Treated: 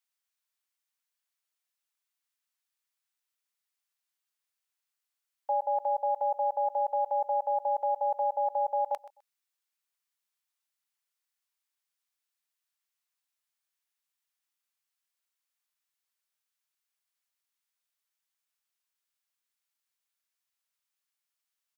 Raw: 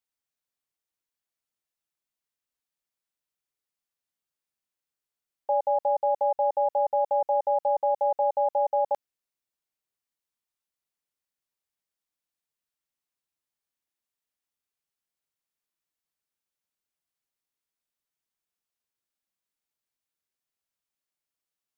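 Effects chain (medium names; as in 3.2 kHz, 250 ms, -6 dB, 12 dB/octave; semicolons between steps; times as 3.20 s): high-pass 1 kHz 12 dB/octave; on a send: feedback delay 128 ms, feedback 18%, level -18 dB; on the sum: trim +3 dB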